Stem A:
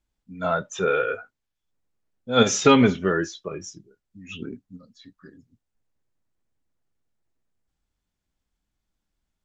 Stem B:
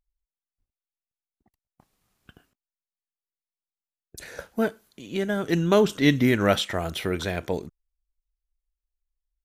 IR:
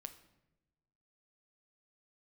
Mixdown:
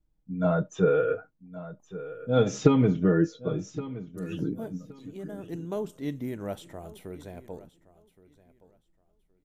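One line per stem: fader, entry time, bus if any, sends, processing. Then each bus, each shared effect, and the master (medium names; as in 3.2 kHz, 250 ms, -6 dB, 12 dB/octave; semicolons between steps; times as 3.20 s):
-3.5 dB, 0.00 s, no send, echo send -15.5 dB, compression 6:1, threshold -19 dBFS, peak gain reduction 9.5 dB; tilt shelf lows +9.5 dB, about 770 Hz; comb 6.4 ms, depth 61%
-14.5 dB, 0.00 s, send -10.5 dB, echo send -17.5 dB, high-order bell 2.7 kHz -10 dB 2.5 oct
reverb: on, RT60 1.0 s, pre-delay 7 ms
echo: feedback delay 1120 ms, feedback 21%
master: none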